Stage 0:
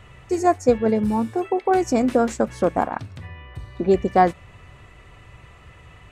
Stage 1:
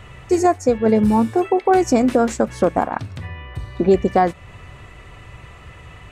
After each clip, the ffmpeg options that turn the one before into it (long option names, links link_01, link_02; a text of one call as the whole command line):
ffmpeg -i in.wav -af "alimiter=limit=-11.5dB:level=0:latency=1:release=305,volume=6dB" out.wav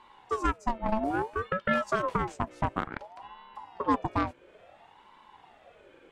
ffmpeg -i in.wav -af "aeval=exprs='0.562*(cos(1*acos(clip(val(0)/0.562,-1,1)))-cos(1*PI/2))+0.112*(cos(3*acos(clip(val(0)/0.562,-1,1)))-cos(3*PI/2))+0.0112*(cos(5*acos(clip(val(0)/0.562,-1,1)))-cos(5*PI/2))':channel_layout=same,highshelf=frequency=5900:gain=-7.5,aeval=exprs='val(0)*sin(2*PI*700*n/s+700*0.4/0.58*sin(2*PI*0.58*n/s))':channel_layout=same,volume=-7dB" out.wav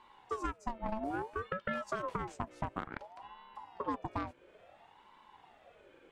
ffmpeg -i in.wav -af "acompressor=threshold=-28dB:ratio=4,volume=-4.5dB" out.wav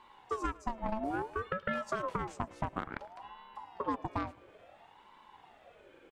ffmpeg -i in.wav -af "aecho=1:1:108|216|324|432:0.0708|0.0375|0.0199|0.0105,volume=2dB" out.wav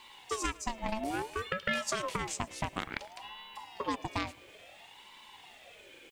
ffmpeg -i in.wav -af "aexciter=amount=2.8:drive=9:freq=2000" out.wav